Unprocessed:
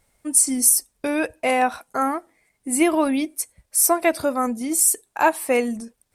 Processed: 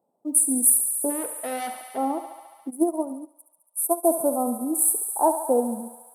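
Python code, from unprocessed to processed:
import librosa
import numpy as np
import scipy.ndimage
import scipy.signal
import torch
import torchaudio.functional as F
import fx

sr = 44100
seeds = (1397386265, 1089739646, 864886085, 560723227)

y = fx.wiener(x, sr, points=9)
y = scipy.signal.sosfilt(scipy.signal.ellip(3, 1.0, 50, [850.0, 9600.0], 'bandstop', fs=sr, output='sos'), y)
y = fx.tube_stage(y, sr, drive_db=29.0, bias=0.3, at=(1.09, 1.96), fade=0.02)
y = scipy.signal.sosfilt(scipy.signal.butter(4, 210.0, 'highpass', fs=sr, output='sos'), y)
y = fx.quant_float(y, sr, bits=6)
y = fx.echo_thinned(y, sr, ms=70, feedback_pct=84, hz=510.0, wet_db=-9.0)
y = fx.upward_expand(y, sr, threshold_db=-29.0, expansion=2.5, at=(2.69, 4.03), fade=0.02)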